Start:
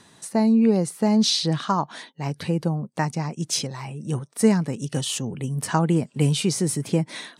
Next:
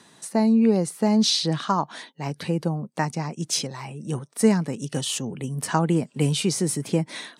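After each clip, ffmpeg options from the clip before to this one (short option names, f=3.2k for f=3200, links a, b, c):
-af "highpass=140"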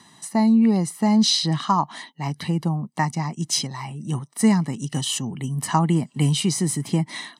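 -af "aecho=1:1:1:0.67"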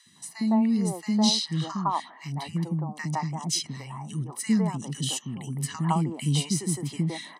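-filter_complex "[0:a]acrossover=split=350|1500[a][b][c];[a]adelay=60[d];[b]adelay=160[e];[d][e][c]amix=inputs=3:normalize=0,volume=-4.5dB"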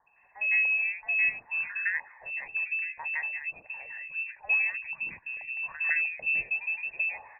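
-af "lowpass=f=2.4k:t=q:w=0.5098,lowpass=f=2.4k:t=q:w=0.6013,lowpass=f=2.4k:t=q:w=0.9,lowpass=f=2.4k:t=q:w=2.563,afreqshift=-2800,volume=-3.5dB"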